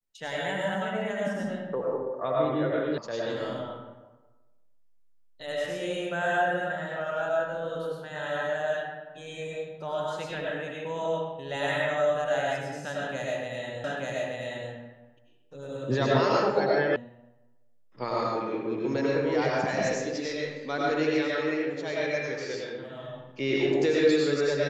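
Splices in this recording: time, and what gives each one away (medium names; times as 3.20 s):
2.98 s: sound stops dead
13.84 s: repeat of the last 0.88 s
16.96 s: sound stops dead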